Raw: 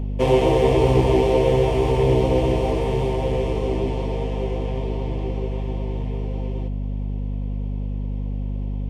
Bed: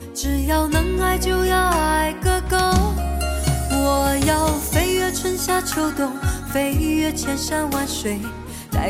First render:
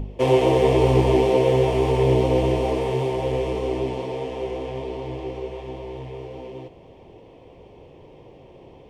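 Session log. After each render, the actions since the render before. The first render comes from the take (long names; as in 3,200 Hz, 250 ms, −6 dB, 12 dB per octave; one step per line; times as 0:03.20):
hum removal 50 Hz, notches 5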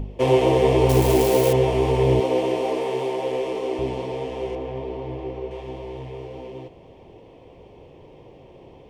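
0:00.89–0:01.53: spike at every zero crossing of −16.5 dBFS
0:02.20–0:03.79: high-pass filter 270 Hz
0:04.55–0:05.51: low-pass filter 2,100 Hz 6 dB per octave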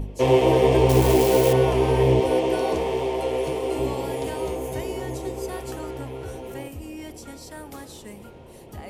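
mix in bed −18 dB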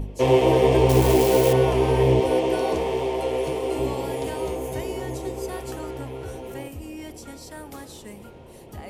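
no processing that can be heard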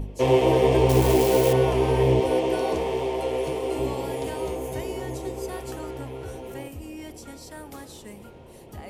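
level −1.5 dB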